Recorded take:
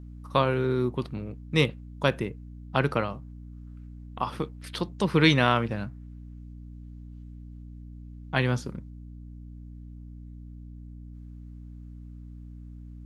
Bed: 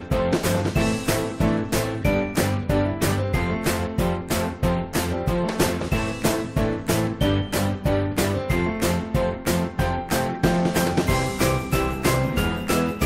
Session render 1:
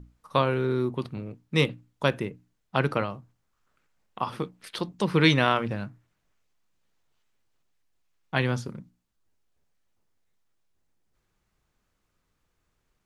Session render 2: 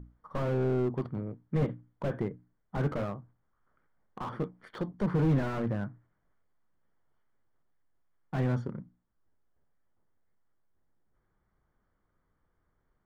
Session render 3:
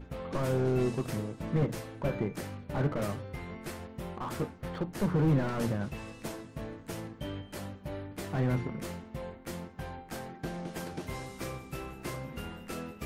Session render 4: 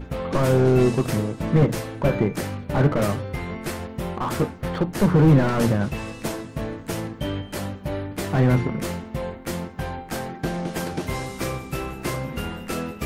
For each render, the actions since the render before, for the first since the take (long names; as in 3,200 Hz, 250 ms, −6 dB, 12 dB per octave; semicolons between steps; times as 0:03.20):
mains-hum notches 60/120/180/240/300 Hz
Savitzky-Golay smoothing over 41 samples; slew-rate limiting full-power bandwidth 18 Hz
mix in bed −18 dB
level +11 dB